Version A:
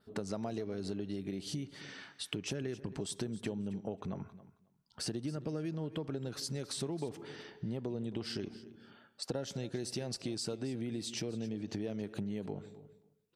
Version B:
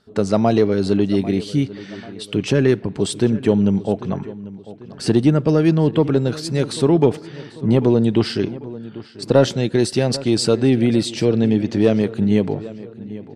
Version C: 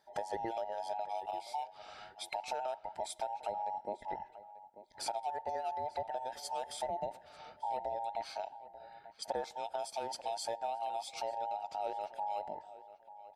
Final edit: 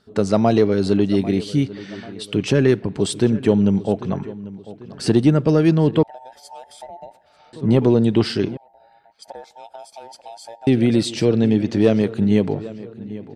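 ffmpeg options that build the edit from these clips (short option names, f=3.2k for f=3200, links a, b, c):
-filter_complex "[2:a]asplit=2[a][b];[1:a]asplit=3[c][d][e];[c]atrim=end=6.032[f];[a]atrim=start=6.028:end=7.532[g];[d]atrim=start=7.528:end=8.572[h];[b]atrim=start=8.568:end=10.672[i];[e]atrim=start=10.668[j];[f][g]acrossfade=d=0.004:c1=hsin:c2=hsin[k];[k][h]acrossfade=d=0.004:c1=hsin:c2=hsin[l];[l][i]acrossfade=d=0.004:c1=hsin:c2=hsin[m];[m][j]acrossfade=d=0.004:c1=hsin:c2=hsin"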